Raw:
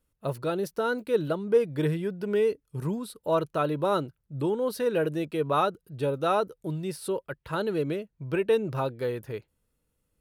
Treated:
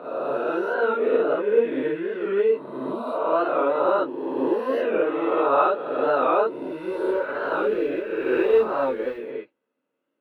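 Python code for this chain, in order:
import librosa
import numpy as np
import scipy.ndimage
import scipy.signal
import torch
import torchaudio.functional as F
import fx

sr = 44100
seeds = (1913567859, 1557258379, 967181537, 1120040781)

y = fx.spec_swells(x, sr, rise_s=1.71)
y = scipy.signal.sosfilt(scipy.signal.butter(4, 260.0, 'highpass', fs=sr, output='sos'), y)
y = fx.notch(y, sr, hz=4900.0, q=5.8)
y = fx.mod_noise(y, sr, seeds[0], snr_db=18, at=(6.51, 9.16))
y = fx.air_absorb(y, sr, metres=480.0)
y = fx.rev_gated(y, sr, seeds[1], gate_ms=80, shape='rising', drr_db=-6.0)
y = fx.record_warp(y, sr, rpm=45.0, depth_cents=100.0)
y = y * librosa.db_to_amplitude(-3.0)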